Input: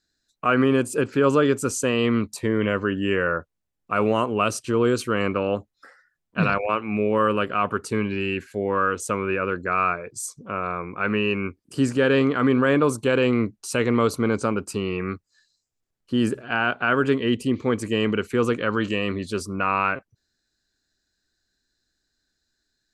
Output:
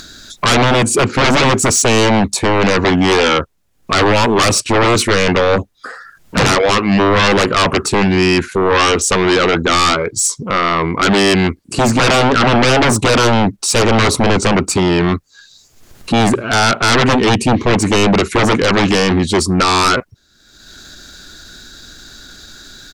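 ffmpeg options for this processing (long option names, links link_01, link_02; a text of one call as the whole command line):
ffmpeg -i in.wav -af "asetrate=41625,aresample=44100,atempo=1.05946,acompressor=mode=upward:threshold=-37dB:ratio=2.5,aeval=exprs='0.447*sin(PI/2*5.62*val(0)/0.447)':channel_layout=same,volume=-1dB" out.wav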